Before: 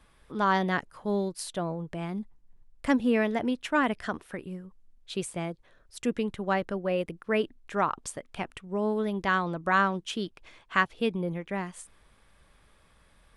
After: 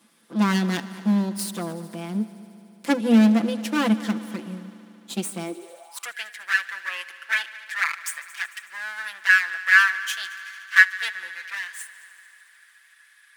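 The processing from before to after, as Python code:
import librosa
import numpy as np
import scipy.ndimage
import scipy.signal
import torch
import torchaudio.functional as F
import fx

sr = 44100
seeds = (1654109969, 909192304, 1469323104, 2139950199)

y = fx.lower_of_two(x, sr, delay_ms=5.9)
y = scipy.signal.sosfilt(scipy.signal.butter(2, 170.0, 'highpass', fs=sr, output='sos'), y)
y = fx.high_shelf(y, sr, hz=3600.0, db=12.0)
y = fx.echo_heads(y, sr, ms=74, heads='all three', feedback_pct=71, wet_db=-22.5)
y = fx.filter_sweep_highpass(y, sr, from_hz=220.0, to_hz=1700.0, start_s=5.42, end_s=6.16, q=7.8)
y = F.gain(torch.from_numpy(y), -1.0).numpy()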